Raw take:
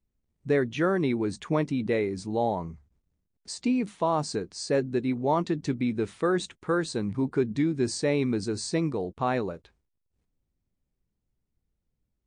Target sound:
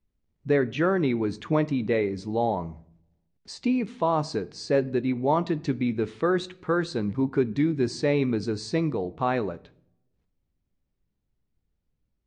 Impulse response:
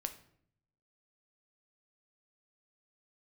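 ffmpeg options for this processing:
-filter_complex "[0:a]lowpass=5700,asplit=2[link_01][link_02];[1:a]atrim=start_sample=2205,lowpass=7100[link_03];[link_02][link_03]afir=irnorm=-1:irlink=0,volume=-4dB[link_04];[link_01][link_04]amix=inputs=2:normalize=0,volume=-2dB"

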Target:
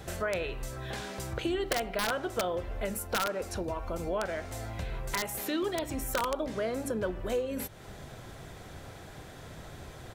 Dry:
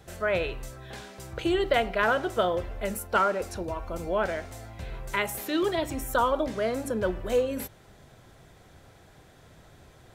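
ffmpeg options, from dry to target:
ffmpeg -i in.wav -filter_complex "[0:a]asplit=2[link_01][link_02];[link_02]asetrate=33038,aresample=44100,atempo=1.33484,volume=-17dB[link_03];[link_01][link_03]amix=inputs=2:normalize=0,aeval=exprs='(mod(5.31*val(0)+1,2)-1)/5.31':channel_layout=same,acompressor=threshold=-43dB:ratio=2.5,volume=7.5dB" out.wav

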